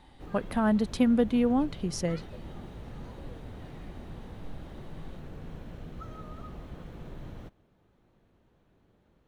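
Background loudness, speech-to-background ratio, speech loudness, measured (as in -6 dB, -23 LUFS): -45.0 LUFS, 17.5 dB, -27.5 LUFS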